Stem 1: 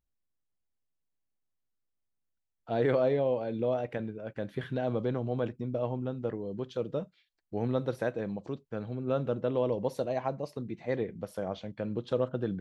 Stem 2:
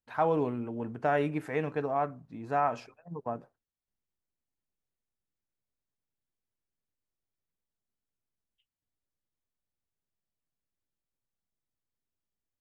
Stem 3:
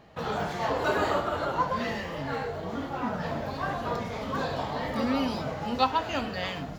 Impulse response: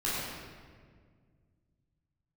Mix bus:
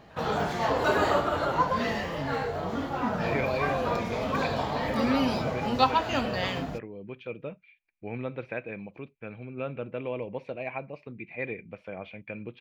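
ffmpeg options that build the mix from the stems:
-filter_complex "[0:a]dynaudnorm=framelen=110:gausssize=11:maxgain=5dB,lowpass=frequency=2400:width_type=q:width=16,adelay=500,volume=-10dB[link_01];[1:a]volume=-12dB[link_02];[2:a]volume=2dB[link_03];[link_01][link_02][link_03]amix=inputs=3:normalize=0"

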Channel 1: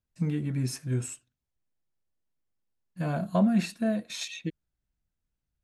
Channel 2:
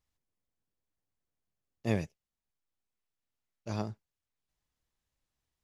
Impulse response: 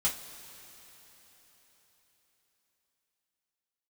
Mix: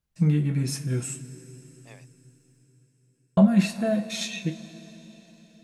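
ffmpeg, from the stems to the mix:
-filter_complex "[0:a]volume=0dB,asplit=3[link_01][link_02][link_03];[link_01]atrim=end=2.63,asetpts=PTS-STARTPTS,afade=type=out:start_time=2.626:duration=0.004:curve=hsin[link_04];[link_02]atrim=start=2.63:end=3.37,asetpts=PTS-STARTPTS,volume=0[link_05];[link_03]atrim=start=3.37,asetpts=PTS-STARTPTS,afade=type=in:duration=0.004:curve=hsin[link_06];[link_04][link_05][link_06]concat=n=3:v=0:a=1,asplit=2[link_07][link_08];[link_08]volume=-6dB[link_09];[1:a]highpass=750,volume=-11dB[link_10];[2:a]atrim=start_sample=2205[link_11];[link_09][link_11]afir=irnorm=-1:irlink=0[link_12];[link_07][link_10][link_12]amix=inputs=3:normalize=0"

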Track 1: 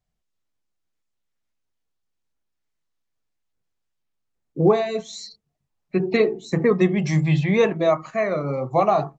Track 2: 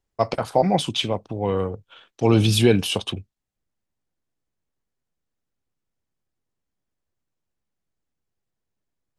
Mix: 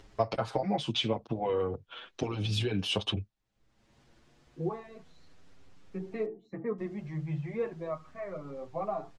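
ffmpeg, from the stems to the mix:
ffmpeg -i stem1.wav -i stem2.wav -filter_complex "[0:a]lowpass=1800,volume=-13.5dB[link_01];[1:a]acompressor=threshold=-24dB:ratio=12,lowpass=5200,acompressor=mode=upward:threshold=-34dB:ratio=2.5,volume=2dB,asplit=3[link_02][link_03][link_04];[link_02]atrim=end=6.26,asetpts=PTS-STARTPTS,afade=type=out:start_time=6.256:duration=0.004:curve=hsin[link_05];[link_03]atrim=start=6.26:end=6.78,asetpts=PTS-STARTPTS,volume=0[link_06];[link_04]atrim=start=6.78,asetpts=PTS-STARTPTS,afade=type=in:duration=0.004:curve=hsin[link_07];[link_05][link_06][link_07]concat=n=3:v=0:a=1[link_08];[link_01][link_08]amix=inputs=2:normalize=0,asplit=2[link_09][link_10];[link_10]adelay=7.2,afreqshift=0.33[link_11];[link_09][link_11]amix=inputs=2:normalize=1" out.wav

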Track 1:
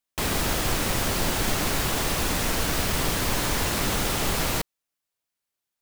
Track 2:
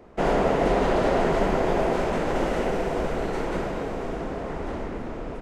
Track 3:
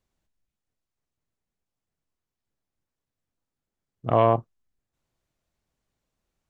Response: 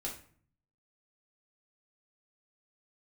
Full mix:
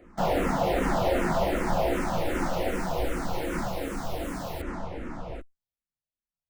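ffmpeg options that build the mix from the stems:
-filter_complex "[0:a]volume=-14.5dB[link_01];[1:a]volume=-2dB,asplit=2[link_02][link_03];[link_03]volume=-5dB[link_04];[2:a]volume=-18.5dB[link_05];[3:a]atrim=start_sample=2205[link_06];[link_04][link_06]afir=irnorm=-1:irlink=0[link_07];[link_01][link_02][link_05][link_07]amix=inputs=4:normalize=0,equalizer=frequency=420:width=5:gain=-12.5,asplit=2[link_08][link_09];[link_09]afreqshift=-2.6[link_10];[link_08][link_10]amix=inputs=2:normalize=1"

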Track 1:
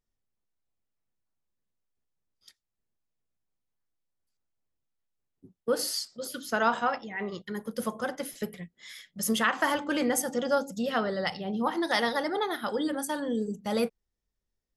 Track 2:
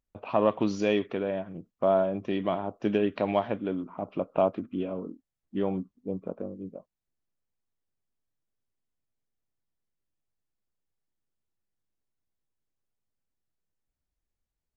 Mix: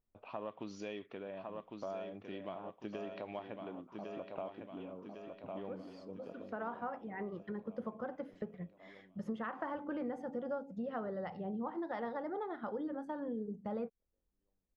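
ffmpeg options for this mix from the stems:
ffmpeg -i stem1.wav -i stem2.wav -filter_complex "[0:a]lowpass=1100,volume=-0.5dB[link_01];[1:a]lowshelf=frequency=490:gain=-5,volume=-11.5dB,asplit=3[link_02][link_03][link_04];[link_03]volume=-7dB[link_05];[link_04]apad=whole_len=651268[link_06];[link_01][link_06]sidechaincompress=threshold=-54dB:ratio=8:attack=43:release=446[link_07];[link_05]aecho=0:1:1104|2208|3312|4416|5520|6624|7728|8832:1|0.52|0.27|0.141|0.0731|0.038|0.0198|0.0103[link_08];[link_07][link_02][link_08]amix=inputs=3:normalize=0,acompressor=threshold=-40dB:ratio=3" out.wav

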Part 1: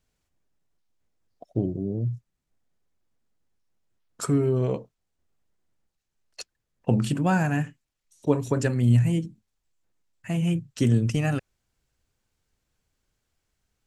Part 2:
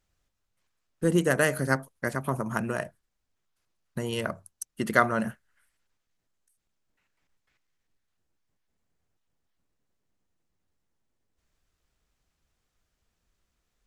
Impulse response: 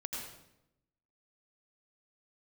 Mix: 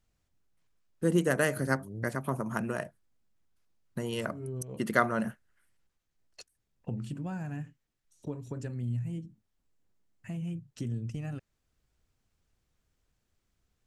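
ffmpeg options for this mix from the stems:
-filter_complex "[0:a]acompressor=threshold=-41dB:ratio=2,volume=-7.5dB[link_01];[1:a]highpass=frequency=210:poles=1,volume=-4.5dB,asplit=2[link_02][link_03];[link_03]apad=whole_len=611440[link_04];[link_01][link_04]sidechaincompress=threshold=-52dB:ratio=3:attack=41:release=112[link_05];[link_05][link_02]amix=inputs=2:normalize=0,lowshelf=frequency=280:gain=8.5"

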